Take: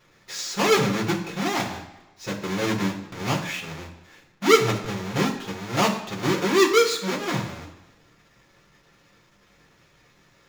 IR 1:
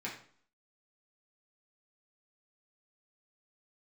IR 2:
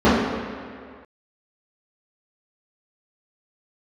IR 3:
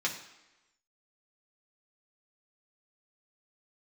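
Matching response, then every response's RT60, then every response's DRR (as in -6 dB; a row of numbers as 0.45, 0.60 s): 3; 0.50, 2.0, 1.0 s; -5.5, -13.5, -2.5 dB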